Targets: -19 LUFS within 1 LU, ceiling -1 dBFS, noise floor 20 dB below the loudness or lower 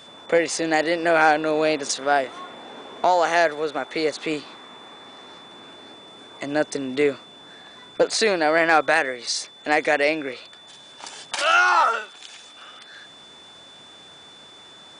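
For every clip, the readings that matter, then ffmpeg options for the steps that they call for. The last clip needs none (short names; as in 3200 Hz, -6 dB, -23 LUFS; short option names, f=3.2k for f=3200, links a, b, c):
steady tone 3500 Hz; tone level -45 dBFS; loudness -21.0 LUFS; peak -5.5 dBFS; loudness target -19.0 LUFS
-> -af "bandreject=f=3.5k:w=30"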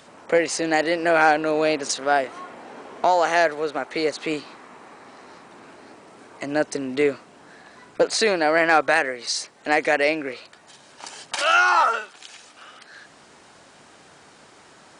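steady tone none; loudness -21.0 LUFS; peak -5.5 dBFS; loudness target -19.0 LUFS
-> -af "volume=2dB"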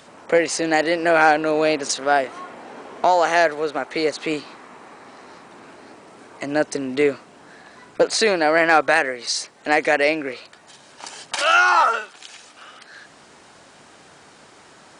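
loudness -19.0 LUFS; peak -3.5 dBFS; noise floor -49 dBFS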